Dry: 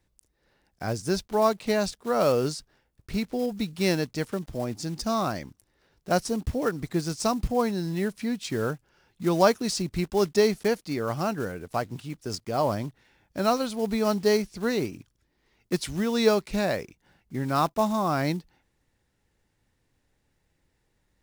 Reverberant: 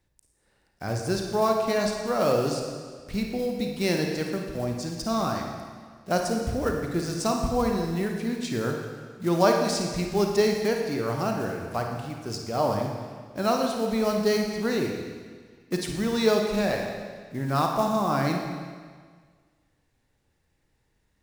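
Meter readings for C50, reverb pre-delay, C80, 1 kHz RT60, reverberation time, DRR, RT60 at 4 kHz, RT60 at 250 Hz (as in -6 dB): 3.0 dB, 35 ms, 4.5 dB, 1.7 s, 1.7 s, 1.5 dB, 1.6 s, 1.7 s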